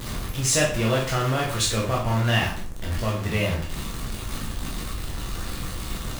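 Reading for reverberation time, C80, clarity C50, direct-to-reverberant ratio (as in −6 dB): 0.50 s, 10.5 dB, 6.0 dB, −4.0 dB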